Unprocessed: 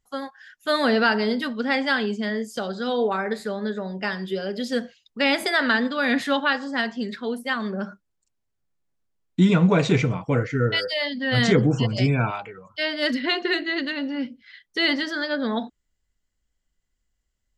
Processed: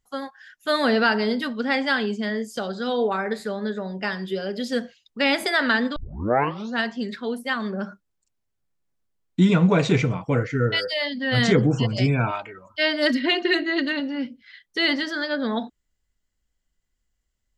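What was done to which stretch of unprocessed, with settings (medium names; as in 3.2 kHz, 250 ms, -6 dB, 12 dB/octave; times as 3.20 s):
5.96 s: tape start 0.87 s
12.27–14.00 s: comb 3.2 ms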